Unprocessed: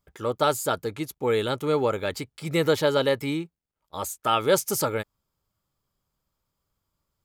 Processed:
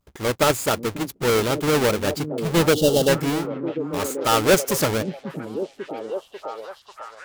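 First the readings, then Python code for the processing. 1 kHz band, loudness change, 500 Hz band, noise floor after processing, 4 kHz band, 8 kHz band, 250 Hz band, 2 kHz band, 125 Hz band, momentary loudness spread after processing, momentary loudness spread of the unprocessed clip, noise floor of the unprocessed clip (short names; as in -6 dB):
+3.0 dB, +4.0 dB, +4.0 dB, -53 dBFS, +5.5 dB, +6.0 dB, +7.0 dB, +6.0 dB, +6.5 dB, 16 LU, 12 LU, -84 dBFS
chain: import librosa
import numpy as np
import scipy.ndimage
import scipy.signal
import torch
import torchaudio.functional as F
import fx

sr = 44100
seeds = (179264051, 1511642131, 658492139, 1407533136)

p1 = fx.halfwave_hold(x, sr)
p2 = fx.spec_box(p1, sr, start_s=2.73, length_s=0.35, low_hz=860.0, high_hz=2700.0, gain_db=-25)
y = p2 + fx.echo_stepped(p2, sr, ms=543, hz=210.0, octaves=0.7, feedback_pct=70, wet_db=-4.0, dry=0)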